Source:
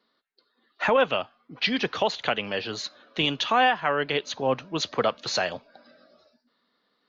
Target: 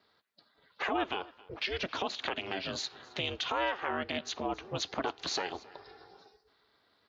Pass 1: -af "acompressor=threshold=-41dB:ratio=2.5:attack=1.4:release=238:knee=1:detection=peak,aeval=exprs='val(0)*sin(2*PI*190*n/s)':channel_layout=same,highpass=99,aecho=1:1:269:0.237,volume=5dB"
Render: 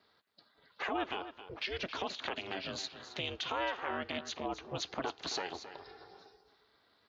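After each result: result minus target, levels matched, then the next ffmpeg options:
echo-to-direct +10 dB; downward compressor: peak gain reduction +3.5 dB
-af "acompressor=threshold=-41dB:ratio=2.5:attack=1.4:release=238:knee=1:detection=peak,aeval=exprs='val(0)*sin(2*PI*190*n/s)':channel_layout=same,highpass=99,aecho=1:1:269:0.075,volume=5dB"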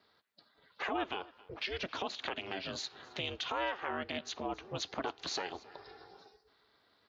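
downward compressor: peak gain reduction +3.5 dB
-af "acompressor=threshold=-35dB:ratio=2.5:attack=1.4:release=238:knee=1:detection=peak,aeval=exprs='val(0)*sin(2*PI*190*n/s)':channel_layout=same,highpass=99,aecho=1:1:269:0.075,volume=5dB"

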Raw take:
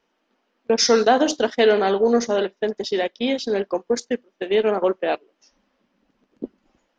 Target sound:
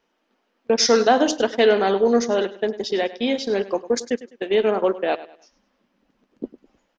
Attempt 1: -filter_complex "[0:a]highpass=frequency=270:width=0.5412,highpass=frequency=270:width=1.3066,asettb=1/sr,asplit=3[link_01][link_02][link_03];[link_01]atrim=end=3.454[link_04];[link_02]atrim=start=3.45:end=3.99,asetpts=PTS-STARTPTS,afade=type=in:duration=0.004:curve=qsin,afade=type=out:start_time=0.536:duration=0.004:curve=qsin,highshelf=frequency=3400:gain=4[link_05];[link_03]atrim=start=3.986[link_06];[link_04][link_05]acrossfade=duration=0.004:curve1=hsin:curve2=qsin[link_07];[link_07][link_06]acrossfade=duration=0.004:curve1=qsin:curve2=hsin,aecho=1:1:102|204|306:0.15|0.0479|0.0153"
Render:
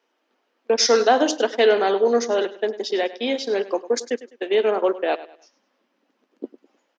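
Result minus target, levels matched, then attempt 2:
250 Hz band −3.5 dB
-filter_complex "[0:a]asettb=1/sr,asplit=3[link_01][link_02][link_03];[link_01]atrim=end=3.454[link_04];[link_02]atrim=start=3.45:end=3.99,asetpts=PTS-STARTPTS,afade=type=in:duration=0.004:curve=qsin,afade=type=out:start_time=0.536:duration=0.004:curve=qsin,highshelf=frequency=3400:gain=4[link_05];[link_03]atrim=start=3.986[link_06];[link_04][link_05]acrossfade=duration=0.004:curve1=hsin:curve2=qsin[link_07];[link_07][link_06]acrossfade=duration=0.004:curve1=qsin:curve2=hsin,aecho=1:1:102|204|306:0.15|0.0479|0.0153"

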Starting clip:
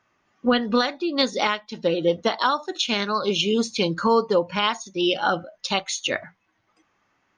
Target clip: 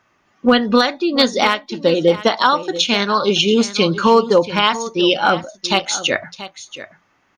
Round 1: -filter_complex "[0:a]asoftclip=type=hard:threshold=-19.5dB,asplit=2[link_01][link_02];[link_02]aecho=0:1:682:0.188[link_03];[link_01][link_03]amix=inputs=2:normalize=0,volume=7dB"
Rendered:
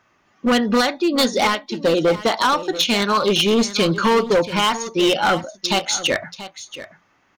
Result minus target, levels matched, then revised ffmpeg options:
hard clipping: distortion +25 dB
-filter_complex "[0:a]asoftclip=type=hard:threshold=-10.5dB,asplit=2[link_01][link_02];[link_02]aecho=0:1:682:0.188[link_03];[link_01][link_03]amix=inputs=2:normalize=0,volume=7dB"

